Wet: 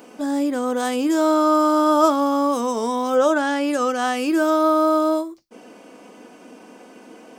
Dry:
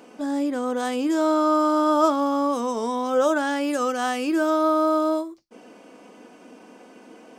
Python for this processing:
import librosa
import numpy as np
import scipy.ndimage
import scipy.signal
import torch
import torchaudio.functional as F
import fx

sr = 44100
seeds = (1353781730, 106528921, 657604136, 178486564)

y = fx.high_shelf(x, sr, hz=10000.0, db=fx.steps((0.0, 9.0), (3.15, -4.5), (4.16, 6.0)))
y = y * librosa.db_to_amplitude(3.0)